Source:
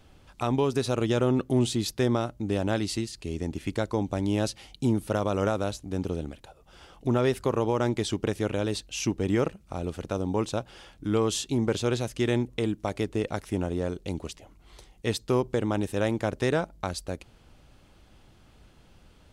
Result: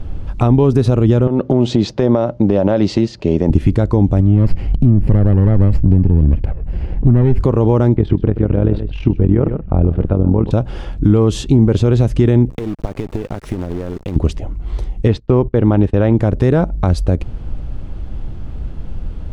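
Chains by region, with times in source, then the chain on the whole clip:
1.27–3.50 s: cabinet simulation 190–6300 Hz, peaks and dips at 280 Hz -4 dB, 570 Hz +9 dB, 920 Hz +4 dB + compression 5:1, threshold -28 dBFS
4.20–7.40 s: comb filter that takes the minimum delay 0.41 ms + tone controls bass +6 dB, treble -13 dB + compression 5:1, threshold -31 dBFS
7.96–10.51 s: distance through air 440 m + AM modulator 42 Hz, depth 55% + delay 128 ms -14.5 dB
12.50–14.16 s: bass shelf 160 Hz -11.5 dB + compression 12:1, threshold -40 dBFS + companded quantiser 4-bit
15.08–16.13 s: low-pass 3.6 kHz + bass shelf 410 Hz -4.5 dB + gate -44 dBFS, range -21 dB
whole clip: tilt EQ -4 dB/octave; compression 3:1, threshold -21 dBFS; loudness maximiser +16 dB; trim -1 dB

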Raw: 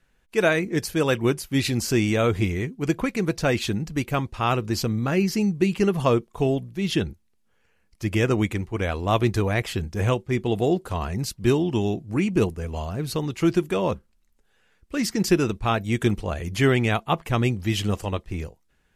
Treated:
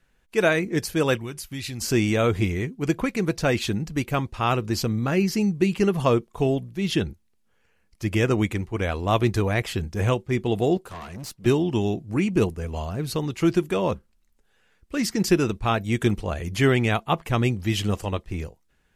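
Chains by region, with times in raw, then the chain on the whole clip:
1.17–1.81 s: peaking EQ 430 Hz -7.5 dB 2.8 oct + compression 3:1, threshold -30 dBFS
10.77–11.46 s: high-pass 190 Hz 6 dB/octave + valve stage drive 32 dB, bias 0.6
whole clip: none

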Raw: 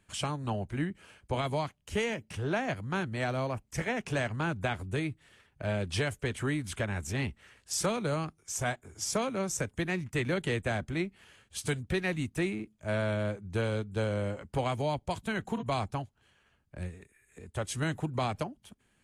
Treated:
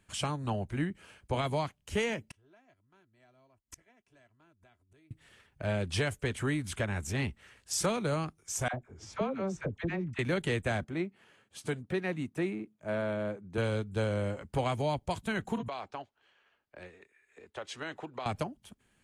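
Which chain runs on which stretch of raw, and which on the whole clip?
2.29–5.11 s: comb 3 ms, depth 48% + inverted gate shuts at -34 dBFS, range -33 dB
8.68–10.19 s: tape spacing loss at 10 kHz 27 dB + phase dispersion lows, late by 59 ms, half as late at 770 Hz
10.84–13.58 s: high-pass 170 Hz + treble shelf 2.3 kHz -10.5 dB
15.68–18.26 s: three-band isolator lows -21 dB, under 320 Hz, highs -23 dB, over 5.5 kHz + compression 5:1, threshold -34 dBFS
whole clip: none

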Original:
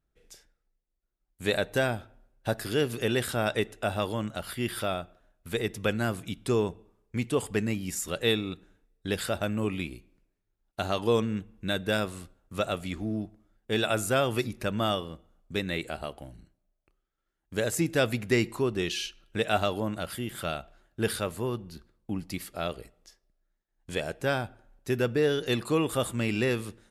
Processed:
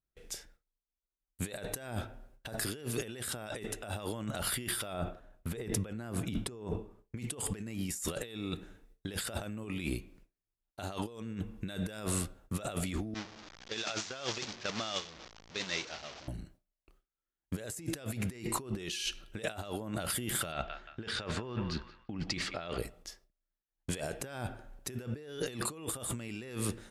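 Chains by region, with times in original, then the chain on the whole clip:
4.93–7.17 s: treble shelf 2 kHz -8 dB + decay stretcher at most 150 dB/s
13.14–16.28 s: one-bit delta coder 32 kbps, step -27 dBFS + expander -21 dBFS + tilt EQ +2.5 dB/octave
20.52–22.78 s: low-pass 5.8 kHz 24 dB/octave + peaking EQ 1.9 kHz +4.5 dB 2.3 oct + band-passed feedback delay 175 ms, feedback 46%, band-pass 1.8 kHz, level -17 dB
whole clip: gate with hold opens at -58 dBFS; dynamic bell 8.8 kHz, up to +6 dB, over -53 dBFS, Q 1; compressor with a negative ratio -39 dBFS, ratio -1

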